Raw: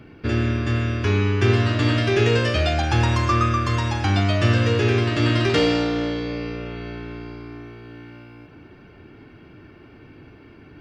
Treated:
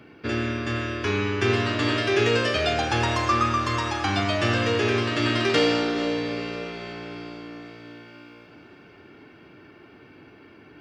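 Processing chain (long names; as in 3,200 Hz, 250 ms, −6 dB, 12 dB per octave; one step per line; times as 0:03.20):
high-pass filter 310 Hz 6 dB per octave
feedback delay with all-pass diffusion 477 ms, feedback 53%, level −13 dB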